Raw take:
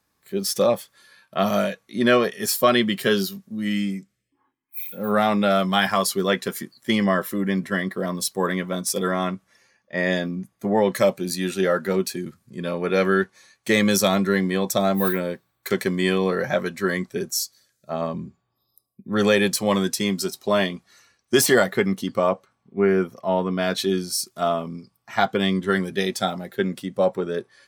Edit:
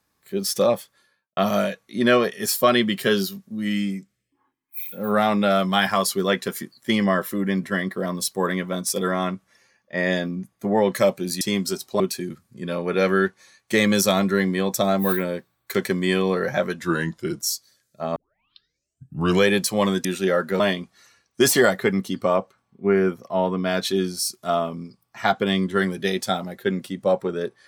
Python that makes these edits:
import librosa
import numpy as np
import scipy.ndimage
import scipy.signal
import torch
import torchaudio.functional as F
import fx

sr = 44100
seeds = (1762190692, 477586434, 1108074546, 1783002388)

y = fx.studio_fade_out(x, sr, start_s=0.74, length_s=0.63)
y = fx.edit(y, sr, fx.swap(start_s=11.41, length_s=0.55, other_s=19.94, other_length_s=0.59),
    fx.speed_span(start_s=16.76, length_s=0.55, speed=0.89),
    fx.tape_start(start_s=18.05, length_s=1.33), tone=tone)